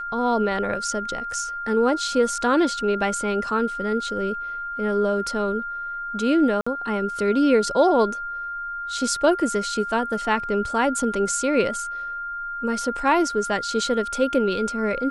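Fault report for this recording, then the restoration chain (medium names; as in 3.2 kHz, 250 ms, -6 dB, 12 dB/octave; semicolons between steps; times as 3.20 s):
whine 1.4 kHz -28 dBFS
6.61–6.67 s: dropout 55 ms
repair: band-stop 1.4 kHz, Q 30; interpolate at 6.61 s, 55 ms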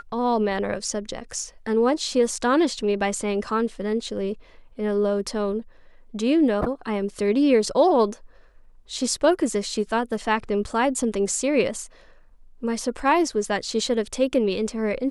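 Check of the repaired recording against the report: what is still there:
nothing left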